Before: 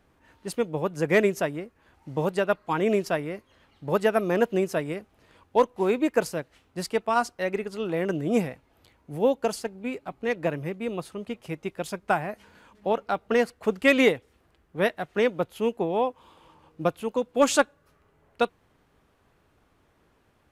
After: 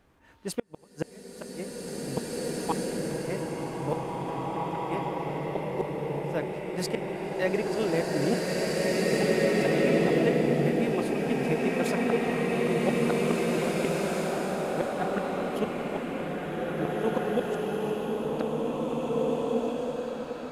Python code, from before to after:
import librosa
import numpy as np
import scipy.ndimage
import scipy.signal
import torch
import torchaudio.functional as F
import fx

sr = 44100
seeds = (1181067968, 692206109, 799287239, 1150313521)

y = fx.gate_flip(x, sr, shuts_db=-16.0, range_db=-38)
y = fx.rev_bloom(y, sr, seeds[0], attack_ms=2300, drr_db=-8.0)